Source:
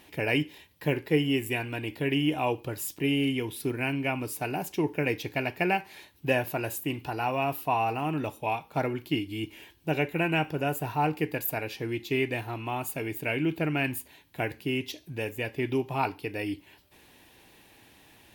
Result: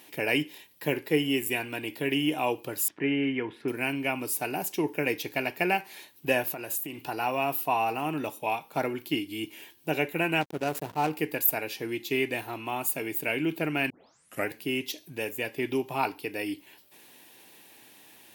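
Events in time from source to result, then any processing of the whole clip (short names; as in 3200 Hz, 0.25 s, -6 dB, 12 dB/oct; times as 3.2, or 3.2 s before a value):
2.88–3.68 synth low-pass 1700 Hz, resonance Q 2.2
6.46–7.04 compressor, threshold -33 dBFS
10.41–11.1 backlash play -28.5 dBFS
13.9 tape start 0.59 s
whole clip: HPF 190 Hz 12 dB/oct; high shelf 5800 Hz +9 dB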